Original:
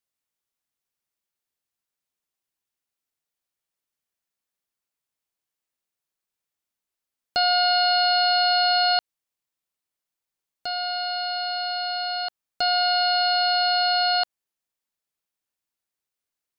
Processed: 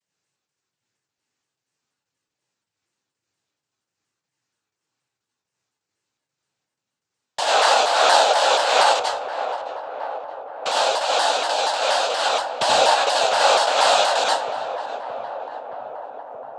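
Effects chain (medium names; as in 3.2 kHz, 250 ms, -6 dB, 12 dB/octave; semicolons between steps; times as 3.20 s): drifting ripple filter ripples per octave 0.78, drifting +2.6 Hz, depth 7 dB; in parallel at -11 dB: integer overflow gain 26 dB; on the sum: dynamic bell 3.7 kHz, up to -5 dB, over -33 dBFS, Q 1.8; compression 2:1, threshold -25 dBFS, peak gain reduction 5 dB; bass shelf 230 Hz +7 dB; noise-vocoded speech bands 8; trance gate "xxx.x.xx.xxx." 124 bpm -60 dB; filtered feedback delay 622 ms, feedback 80%, low-pass 1.4 kHz, level -10 dB; plate-style reverb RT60 0.5 s, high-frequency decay 0.65×, pre-delay 75 ms, DRR -3.5 dB; vibrato with a chosen wave saw down 4.2 Hz, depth 160 cents; trim +4 dB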